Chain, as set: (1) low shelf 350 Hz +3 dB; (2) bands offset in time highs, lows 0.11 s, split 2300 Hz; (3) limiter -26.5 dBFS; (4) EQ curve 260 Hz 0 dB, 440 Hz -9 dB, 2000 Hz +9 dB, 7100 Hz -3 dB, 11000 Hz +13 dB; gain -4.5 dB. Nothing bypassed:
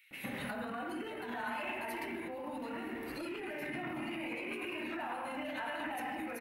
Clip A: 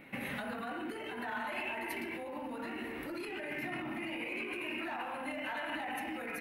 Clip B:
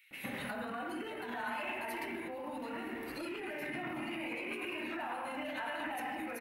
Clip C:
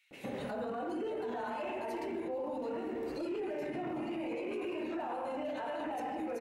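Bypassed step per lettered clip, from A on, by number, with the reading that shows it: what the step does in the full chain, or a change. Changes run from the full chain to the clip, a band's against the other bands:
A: 2, 2 kHz band +2.0 dB; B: 1, 125 Hz band -2.0 dB; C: 4, 2 kHz band -8.0 dB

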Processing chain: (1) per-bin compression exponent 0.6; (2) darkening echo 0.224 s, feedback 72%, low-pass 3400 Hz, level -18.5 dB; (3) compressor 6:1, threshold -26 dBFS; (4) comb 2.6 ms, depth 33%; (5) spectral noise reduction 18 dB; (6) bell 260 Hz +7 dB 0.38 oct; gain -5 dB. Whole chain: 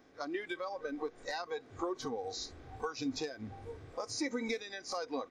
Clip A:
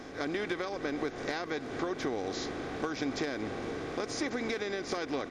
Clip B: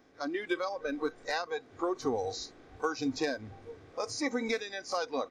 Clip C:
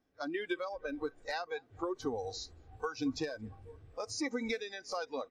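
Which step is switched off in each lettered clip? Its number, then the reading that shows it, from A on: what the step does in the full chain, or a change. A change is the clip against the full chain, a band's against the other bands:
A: 5, 8 kHz band -4.5 dB; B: 3, mean gain reduction 2.5 dB; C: 1, 8 kHz band -2.0 dB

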